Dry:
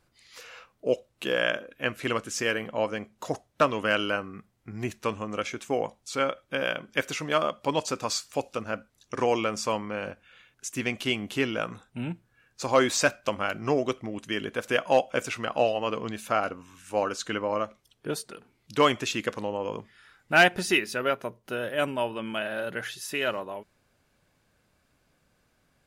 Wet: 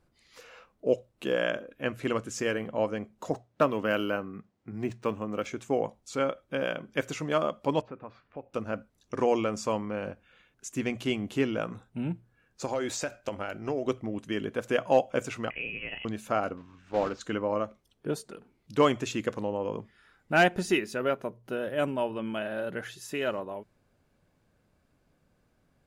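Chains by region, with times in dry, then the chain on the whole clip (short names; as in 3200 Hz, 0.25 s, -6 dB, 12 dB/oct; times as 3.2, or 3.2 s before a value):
3.3–5.46 HPF 110 Hz + decimation joined by straight lines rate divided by 3×
7.81–8.54 LPF 2300 Hz 24 dB/oct + compressor 1.5:1, threshold -56 dBFS
12.65–13.87 bell 170 Hz -6.5 dB 1.4 oct + notch 1100 Hz, Q 6.8 + compressor, threshold -25 dBFS
15.5–16.05 doubler 33 ms -12 dB + compressor 2.5:1, threshold -28 dBFS + inverted band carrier 3100 Hz
16.57–17.21 block floating point 3-bit + air absorption 180 m
whole clip: tilt shelf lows +5 dB; notches 60/120 Hz; dynamic EQ 7000 Hz, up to +5 dB, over -58 dBFS, Q 4.2; gain -3 dB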